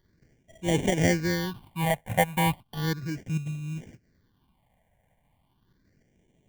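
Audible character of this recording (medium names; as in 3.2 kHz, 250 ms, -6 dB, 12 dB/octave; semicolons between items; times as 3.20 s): aliases and images of a low sample rate 1.3 kHz, jitter 0%; phasing stages 6, 0.35 Hz, lowest notch 330–1300 Hz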